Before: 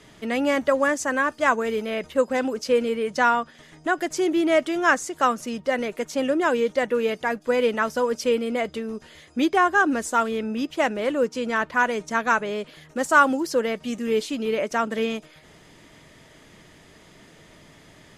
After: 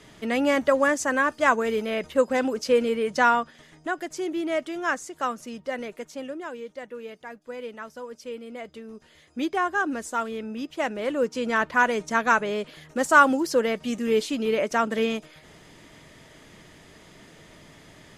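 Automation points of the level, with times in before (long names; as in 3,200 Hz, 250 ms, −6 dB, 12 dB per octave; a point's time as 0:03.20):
0:03.36 0 dB
0:04.06 −7 dB
0:05.90 −7 dB
0:06.52 −15 dB
0:08.22 −15 dB
0:09.44 −6 dB
0:10.68 −6 dB
0:11.56 +0.5 dB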